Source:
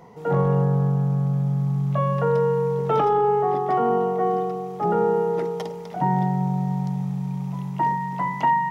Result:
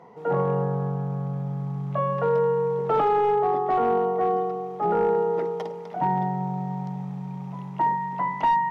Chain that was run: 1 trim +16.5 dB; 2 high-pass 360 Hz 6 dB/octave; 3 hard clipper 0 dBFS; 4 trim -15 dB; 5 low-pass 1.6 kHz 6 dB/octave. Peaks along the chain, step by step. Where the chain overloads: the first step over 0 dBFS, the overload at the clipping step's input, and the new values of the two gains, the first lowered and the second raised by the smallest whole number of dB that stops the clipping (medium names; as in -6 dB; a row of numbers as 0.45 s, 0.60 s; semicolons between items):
+5.5 dBFS, +4.5 dBFS, 0.0 dBFS, -15.0 dBFS, -15.0 dBFS; step 1, 4.5 dB; step 1 +11.5 dB, step 4 -10 dB